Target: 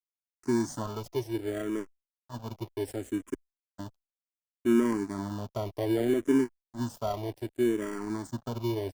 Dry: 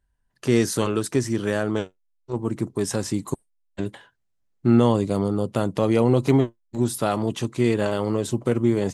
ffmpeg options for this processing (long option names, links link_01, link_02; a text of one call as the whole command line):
ffmpeg -i in.wav -filter_complex "[0:a]asuperstop=centerf=2700:order=8:qfactor=0.78,highshelf=frequency=10000:gain=-3.5,aecho=1:1:3:0.79,asplit=2[link_01][link_02];[link_02]acrusher=samples=34:mix=1:aa=0.000001,volume=-7dB[link_03];[link_01][link_03]amix=inputs=2:normalize=0,aeval=exprs='sgn(val(0))*max(abs(val(0))-0.0211,0)':channel_layout=same,asplit=2[link_04][link_05];[link_05]afreqshift=-0.66[link_06];[link_04][link_06]amix=inputs=2:normalize=1,volume=-9dB" out.wav